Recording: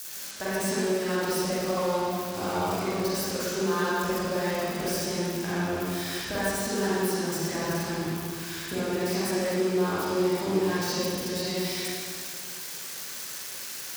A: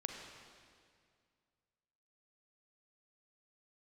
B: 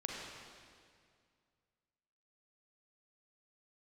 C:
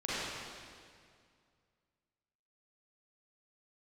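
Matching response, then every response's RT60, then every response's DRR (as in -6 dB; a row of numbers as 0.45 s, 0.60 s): C; 2.1 s, 2.1 s, 2.1 s; 2.0 dB, -2.0 dB, -10.5 dB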